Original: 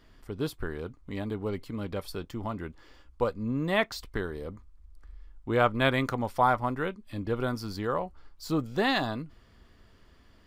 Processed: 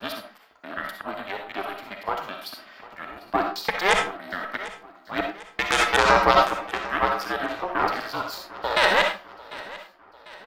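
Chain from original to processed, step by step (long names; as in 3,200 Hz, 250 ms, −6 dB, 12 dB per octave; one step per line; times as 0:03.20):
slices reordered back to front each 127 ms, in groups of 4
noise gate with hold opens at −46 dBFS
high-pass filter 640 Hz 24 dB per octave
parametric band 8,100 Hz −12 dB 1.1 octaves
harmonic generator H 3 −7 dB, 5 −16 dB, 6 −28 dB, 7 −42 dB, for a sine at −11 dBFS
ring modulation 190 Hz
repeating echo 747 ms, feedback 51%, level −19 dB
on a send at −3 dB: convolution reverb RT60 0.35 s, pre-delay 19 ms
on the sum: boost into a limiter +22 dB
level −1 dB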